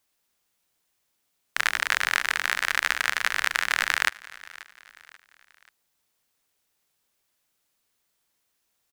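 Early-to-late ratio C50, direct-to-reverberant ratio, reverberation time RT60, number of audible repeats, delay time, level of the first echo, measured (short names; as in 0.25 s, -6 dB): none, none, none, 3, 0.535 s, -20.0 dB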